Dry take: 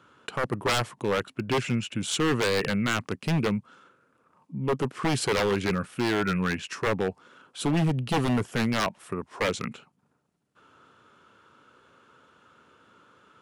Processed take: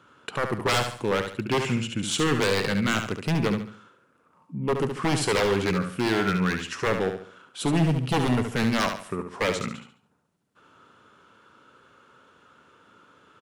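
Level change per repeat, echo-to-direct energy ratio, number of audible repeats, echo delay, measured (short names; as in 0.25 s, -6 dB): -9.0 dB, -6.5 dB, 4, 71 ms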